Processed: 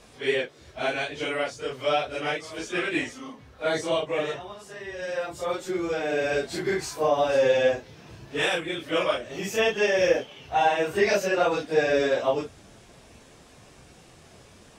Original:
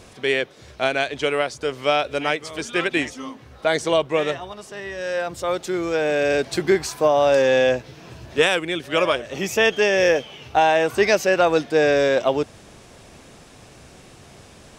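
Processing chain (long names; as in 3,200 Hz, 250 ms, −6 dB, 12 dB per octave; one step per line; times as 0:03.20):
random phases in long frames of 100 ms
level −5.5 dB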